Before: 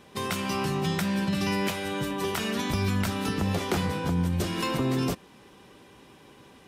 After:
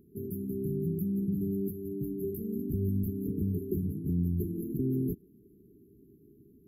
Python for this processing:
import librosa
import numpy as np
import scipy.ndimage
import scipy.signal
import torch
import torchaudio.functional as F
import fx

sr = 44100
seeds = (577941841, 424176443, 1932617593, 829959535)

y = fx.dmg_crackle(x, sr, seeds[0], per_s=14.0, level_db=-48.0, at=(4.0, 4.54), fade=0.02)
y = fx.brickwall_bandstop(y, sr, low_hz=440.0, high_hz=11000.0)
y = F.gain(torch.from_numpy(y), -3.0).numpy()